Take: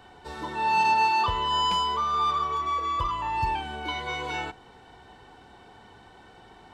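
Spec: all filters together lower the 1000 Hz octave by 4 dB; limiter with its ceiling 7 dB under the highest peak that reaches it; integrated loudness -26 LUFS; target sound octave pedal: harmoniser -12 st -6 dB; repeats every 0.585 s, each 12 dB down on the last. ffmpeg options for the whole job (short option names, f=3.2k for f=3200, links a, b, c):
-filter_complex "[0:a]equalizer=f=1k:t=o:g=-4.5,alimiter=limit=-22.5dB:level=0:latency=1,aecho=1:1:585|1170|1755:0.251|0.0628|0.0157,asplit=2[a][b];[b]asetrate=22050,aresample=44100,atempo=2,volume=-6dB[c];[a][c]amix=inputs=2:normalize=0,volume=3.5dB"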